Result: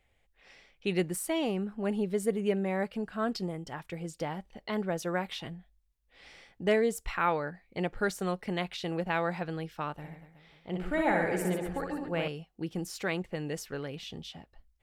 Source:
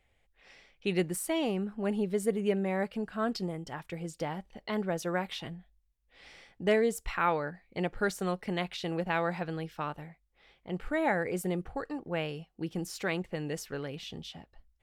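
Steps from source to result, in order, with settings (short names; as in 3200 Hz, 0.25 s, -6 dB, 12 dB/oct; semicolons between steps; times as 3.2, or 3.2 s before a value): 9.93–12.28 reverse bouncing-ball echo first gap 60 ms, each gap 1.3×, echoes 5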